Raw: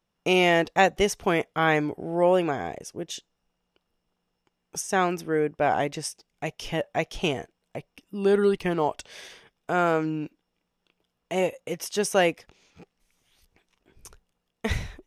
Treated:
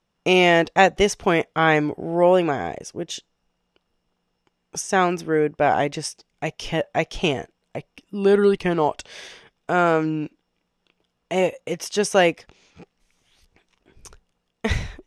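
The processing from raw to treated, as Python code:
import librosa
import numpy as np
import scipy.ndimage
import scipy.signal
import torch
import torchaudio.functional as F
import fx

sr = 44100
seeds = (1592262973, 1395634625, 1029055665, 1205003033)

y = scipy.signal.sosfilt(scipy.signal.butter(2, 8500.0, 'lowpass', fs=sr, output='sos'), x)
y = y * 10.0 ** (4.5 / 20.0)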